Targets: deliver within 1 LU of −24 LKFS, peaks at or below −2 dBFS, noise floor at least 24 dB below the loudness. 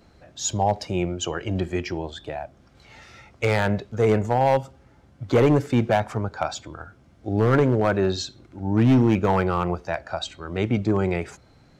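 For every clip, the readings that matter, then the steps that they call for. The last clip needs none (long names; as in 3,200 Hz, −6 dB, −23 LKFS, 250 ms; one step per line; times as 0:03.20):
share of clipped samples 1.2%; peaks flattened at −12.0 dBFS; integrated loudness −23.0 LKFS; sample peak −12.0 dBFS; target loudness −24.0 LKFS
→ clipped peaks rebuilt −12 dBFS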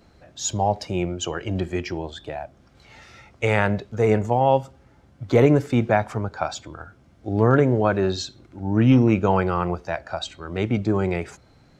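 share of clipped samples 0.0%; integrated loudness −22.0 LKFS; sample peak −3.5 dBFS; target loudness −24.0 LKFS
→ level −2 dB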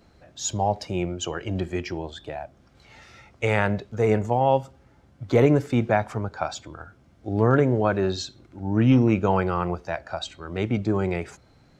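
integrated loudness −24.0 LKFS; sample peak −5.5 dBFS; background noise floor −57 dBFS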